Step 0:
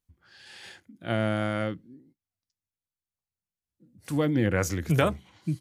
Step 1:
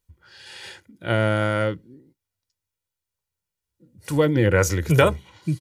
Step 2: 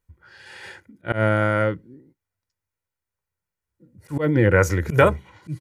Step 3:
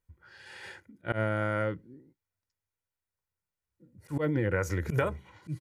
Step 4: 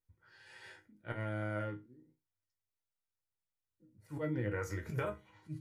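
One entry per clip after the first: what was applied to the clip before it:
comb 2.1 ms, depth 48%; gain +6 dB
resonant high shelf 2500 Hz -6.5 dB, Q 1.5; auto swell 0.104 s; gain +1.5 dB
compressor 6:1, threshold -19 dBFS, peak gain reduction 9.5 dB; gain -5.5 dB
resonator bank G#2 minor, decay 0.23 s; gain +3 dB

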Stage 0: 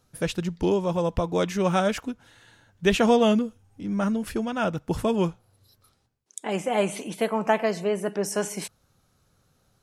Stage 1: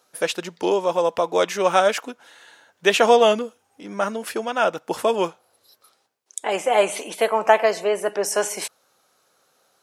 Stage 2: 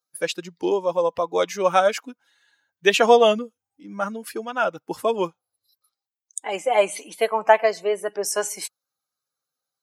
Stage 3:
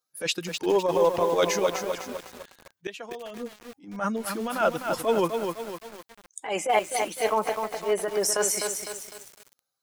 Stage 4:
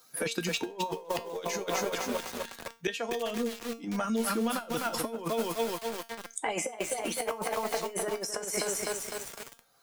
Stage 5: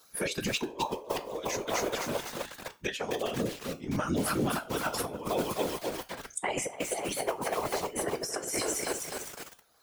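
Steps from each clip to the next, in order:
Chebyshev high-pass 540 Hz, order 2; gain +7.5 dB
per-bin expansion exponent 1.5; gain +1.5 dB
flipped gate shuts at -8 dBFS, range -26 dB; transient shaper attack -11 dB, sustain +3 dB; lo-fi delay 0.253 s, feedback 55%, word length 7-bit, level -5 dB; gain +2 dB
negative-ratio compressor -30 dBFS, ratio -0.5; resonator 230 Hz, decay 0.25 s, harmonics all, mix 70%; three-band squash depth 70%; gain +6 dB
whisperiser

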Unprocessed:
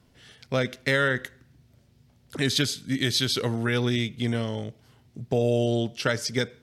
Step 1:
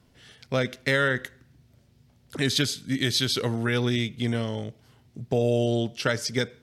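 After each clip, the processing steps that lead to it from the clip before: nothing audible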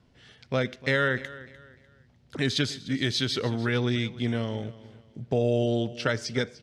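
air absorption 77 m; feedback echo 0.299 s, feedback 32%, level -18 dB; gain -1 dB

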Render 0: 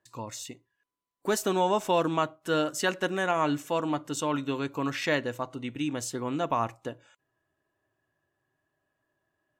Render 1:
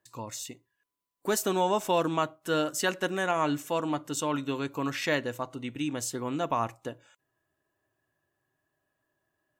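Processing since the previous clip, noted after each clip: high shelf 8900 Hz +7.5 dB; gain -1 dB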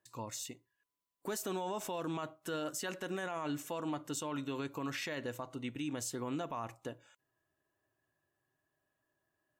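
limiter -25.5 dBFS, peak gain reduction 11 dB; gain -4 dB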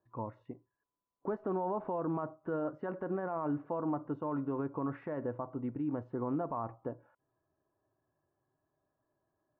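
LPF 1200 Hz 24 dB/oct; gain +4 dB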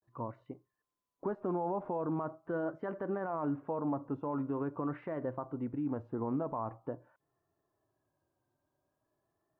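vibrato 0.44 Hz 97 cents

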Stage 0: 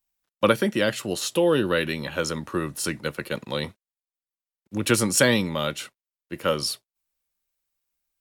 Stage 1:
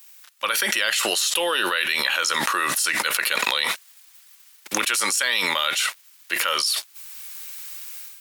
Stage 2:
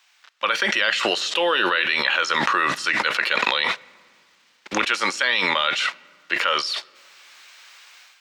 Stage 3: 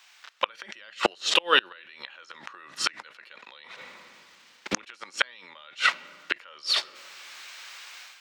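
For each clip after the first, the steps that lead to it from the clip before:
AGC gain up to 12 dB; HPF 1400 Hz 12 dB/oct; fast leveller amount 100%; gain -8 dB
air absorption 170 m; on a send at -22 dB: reverb RT60 2.0 s, pre-delay 5 ms; on the sum: gain +4 dB
flipped gate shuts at -9 dBFS, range -31 dB; gain +3.5 dB

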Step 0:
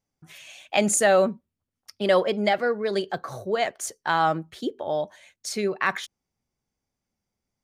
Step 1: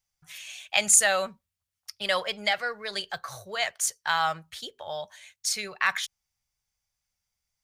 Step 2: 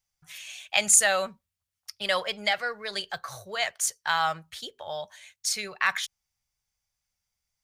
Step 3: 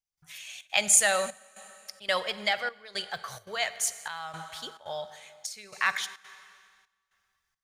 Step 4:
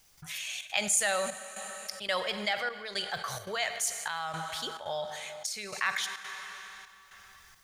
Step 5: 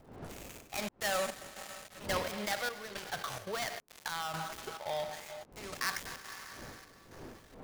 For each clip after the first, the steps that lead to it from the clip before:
passive tone stack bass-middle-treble 10-0-10; gain +6 dB
nothing audible
on a send at -13.5 dB: reverb RT60 2.2 s, pre-delay 44 ms; on the sum: step gate "..xxxxx.xxxxxxx." 173 bpm -12 dB; gain -1.5 dB
fast leveller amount 50%; gain -7.5 dB
switching dead time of 0.17 ms; wind noise 510 Hz -52 dBFS; gain -1 dB

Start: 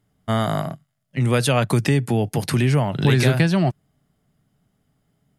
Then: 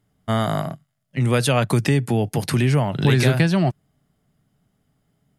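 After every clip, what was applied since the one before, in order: nothing audible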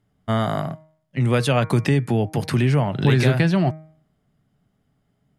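high shelf 5800 Hz -9.5 dB; de-hum 157.1 Hz, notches 15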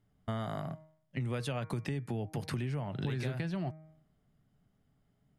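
low shelf 62 Hz +7.5 dB; compressor 4:1, threshold -28 dBFS, peak gain reduction 13.5 dB; gain -6.5 dB

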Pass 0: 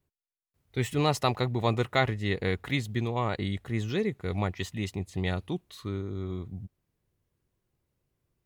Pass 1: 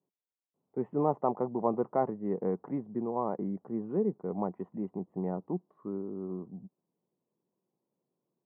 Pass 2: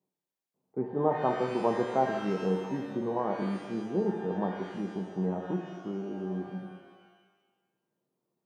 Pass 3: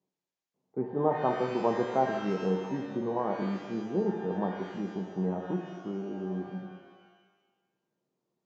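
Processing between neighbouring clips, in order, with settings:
elliptic band-pass 180–980 Hz, stop band 60 dB
shimmer reverb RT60 1.2 s, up +12 st, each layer -8 dB, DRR 3.5 dB
downsampling 16000 Hz

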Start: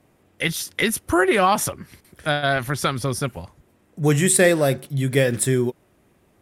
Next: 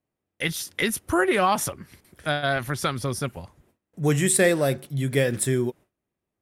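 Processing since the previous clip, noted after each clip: gate with hold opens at -48 dBFS; gain -3.5 dB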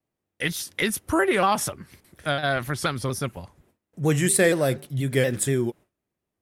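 shaped vibrato saw down 4.2 Hz, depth 100 cents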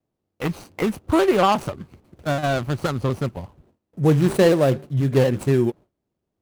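median filter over 25 samples; gain +5.5 dB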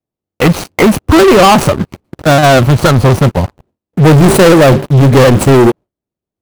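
sample leveller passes 5; gain +4 dB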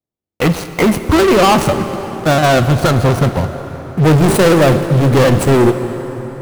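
plate-style reverb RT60 4.9 s, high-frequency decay 0.6×, DRR 8.5 dB; gain -5 dB

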